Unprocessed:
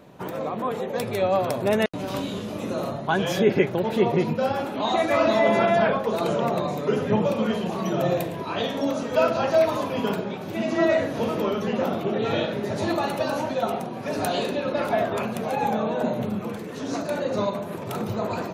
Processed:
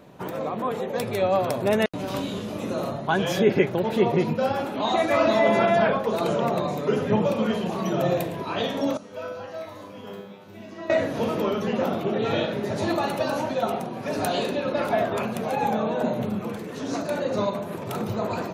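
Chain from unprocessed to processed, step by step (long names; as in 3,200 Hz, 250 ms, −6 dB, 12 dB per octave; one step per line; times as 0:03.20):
0:08.97–0:10.90: tuned comb filter 100 Hz, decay 0.9 s, harmonics all, mix 90%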